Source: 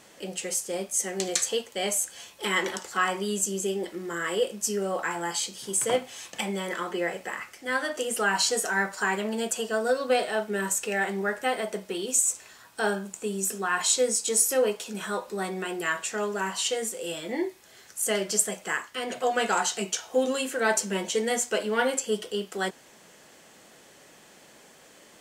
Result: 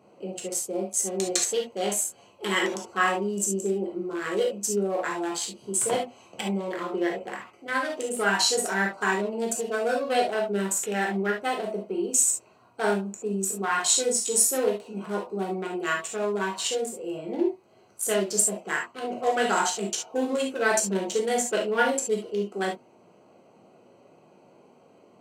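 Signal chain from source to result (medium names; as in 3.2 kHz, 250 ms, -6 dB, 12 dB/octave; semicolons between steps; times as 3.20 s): local Wiener filter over 25 samples; high-pass 110 Hz 24 dB/octave; reverberation, pre-delay 3 ms, DRR -0.5 dB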